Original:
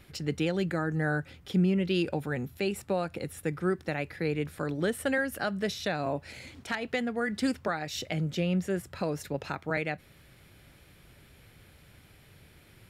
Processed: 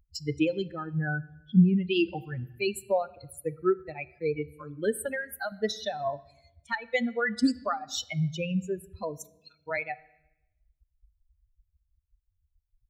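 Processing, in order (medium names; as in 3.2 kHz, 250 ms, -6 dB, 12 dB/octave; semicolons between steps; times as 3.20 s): expander on every frequency bin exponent 3; 0.71–1.59 s: tape spacing loss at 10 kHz 31 dB; 5.00–5.52 s: compression, threshold -39 dBFS, peak gain reduction 10 dB; 9.17–9.60 s: steep high-pass 2.2 kHz 36 dB/octave; on a send: reverberation RT60 0.90 s, pre-delay 3 ms, DRR 17 dB; on the sum: trim +8.5 dB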